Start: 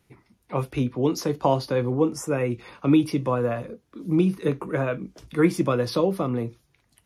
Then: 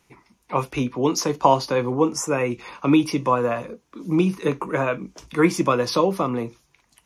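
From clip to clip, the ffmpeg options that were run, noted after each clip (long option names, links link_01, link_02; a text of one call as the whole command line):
ffmpeg -i in.wav -af "equalizer=frequency=100:width_type=o:width=0.67:gain=-9,equalizer=frequency=1000:width_type=o:width=0.67:gain=8,equalizer=frequency=2500:width_type=o:width=0.67:gain=5,equalizer=frequency=6300:width_type=o:width=0.67:gain=9,volume=1.5dB" out.wav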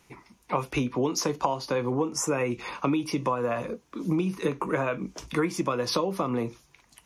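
ffmpeg -i in.wav -af "acompressor=threshold=-25dB:ratio=12,volume=2.5dB" out.wav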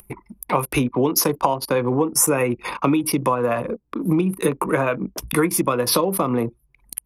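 ffmpeg -i in.wav -af "aexciter=amount=11:drive=3.1:freq=9200,acompressor=mode=upward:threshold=-28dB:ratio=2.5,anlmdn=6.31,volume=7dB" out.wav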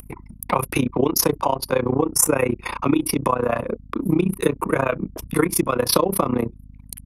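ffmpeg -i in.wav -af "aeval=exprs='val(0)+0.00891*(sin(2*PI*50*n/s)+sin(2*PI*2*50*n/s)/2+sin(2*PI*3*50*n/s)/3+sin(2*PI*4*50*n/s)/4+sin(2*PI*5*50*n/s)/5)':channel_layout=same,tremolo=f=30:d=0.919,volume=3.5dB" out.wav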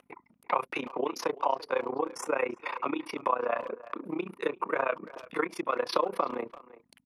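ffmpeg -i in.wav -filter_complex "[0:a]highpass=510,lowpass=3000,asplit=2[link_01][link_02];[link_02]adelay=340,highpass=300,lowpass=3400,asoftclip=type=hard:threshold=-15.5dB,volume=-17dB[link_03];[link_01][link_03]amix=inputs=2:normalize=0,volume=-5.5dB" out.wav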